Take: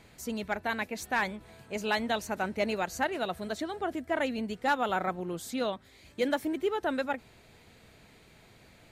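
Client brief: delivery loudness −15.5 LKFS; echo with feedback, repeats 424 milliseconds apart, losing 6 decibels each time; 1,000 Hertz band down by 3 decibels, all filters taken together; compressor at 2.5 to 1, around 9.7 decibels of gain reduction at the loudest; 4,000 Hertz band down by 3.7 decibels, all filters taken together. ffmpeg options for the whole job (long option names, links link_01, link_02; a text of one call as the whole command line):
ffmpeg -i in.wav -af "equalizer=frequency=1000:width_type=o:gain=-4,equalizer=frequency=4000:width_type=o:gain=-4.5,acompressor=threshold=-40dB:ratio=2.5,aecho=1:1:424|848|1272|1696|2120|2544:0.501|0.251|0.125|0.0626|0.0313|0.0157,volume=25dB" out.wav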